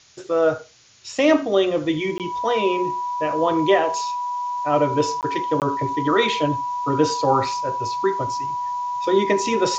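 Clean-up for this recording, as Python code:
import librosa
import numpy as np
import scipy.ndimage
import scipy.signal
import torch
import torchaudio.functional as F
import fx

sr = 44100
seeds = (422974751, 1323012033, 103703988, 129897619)

y = fx.notch(x, sr, hz=980.0, q=30.0)
y = fx.fix_interpolate(y, sr, at_s=(2.18, 5.21, 5.6), length_ms=18.0)
y = fx.noise_reduce(y, sr, print_start_s=0.58, print_end_s=1.08, reduce_db=30.0)
y = fx.fix_echo_inverse(y, sr, delay_ms=87, level_db=-23.0)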